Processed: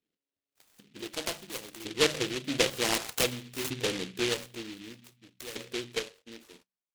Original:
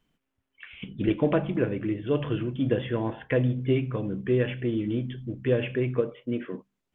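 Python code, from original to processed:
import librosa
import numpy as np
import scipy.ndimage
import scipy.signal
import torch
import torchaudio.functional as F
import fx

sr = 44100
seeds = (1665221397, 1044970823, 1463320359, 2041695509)

y = fx.doppler_pass(x, sr, speed_mps=16, closest_m=9.2, pass_at_s=3.07)
y = fx.filter_lfo_bandpass(y, sr, shape='saw_up', hz=0.54, low_hz=410.0, high_hz=1900.0, q=1.8)
y = fx.noise_mod_delay(y, sr, seeds[0], noise_hz=2800.0, depth_ms=0.28)
y = F.gain(torch.from_numpy(y), 9.0).numpy()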